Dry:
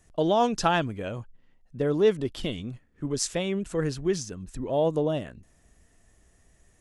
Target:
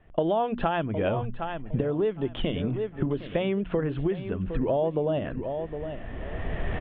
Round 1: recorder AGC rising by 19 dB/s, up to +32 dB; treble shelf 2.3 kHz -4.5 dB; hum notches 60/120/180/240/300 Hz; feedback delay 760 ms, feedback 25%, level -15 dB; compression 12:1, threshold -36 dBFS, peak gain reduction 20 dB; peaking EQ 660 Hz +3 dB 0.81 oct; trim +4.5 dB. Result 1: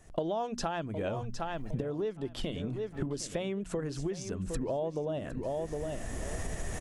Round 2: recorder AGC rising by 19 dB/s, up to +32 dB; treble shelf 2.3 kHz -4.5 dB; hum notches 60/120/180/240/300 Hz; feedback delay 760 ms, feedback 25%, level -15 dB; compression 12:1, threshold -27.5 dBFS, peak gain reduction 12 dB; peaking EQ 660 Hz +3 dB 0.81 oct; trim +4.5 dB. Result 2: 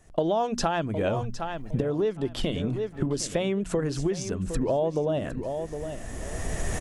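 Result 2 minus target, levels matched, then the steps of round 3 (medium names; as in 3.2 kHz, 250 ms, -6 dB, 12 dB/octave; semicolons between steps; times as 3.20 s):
4 kHz band +3.5 dB
recorder AGC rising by 19 dB/s, up to +32 dB; steep low-pass 3.4 kHz 72 dB/octave; treble shelf 2.3 kHz -4.5 dB; hum notches 60/120/180/240/300 Hz; feedback delay 760 ms, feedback 25%, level -15 dB; compression 12:1, threshold -27.5 dBFS, peak gain reduction 12 dB; peaking EQ 660 Hz +3 dB 0.81 oct; trim +4.5 dB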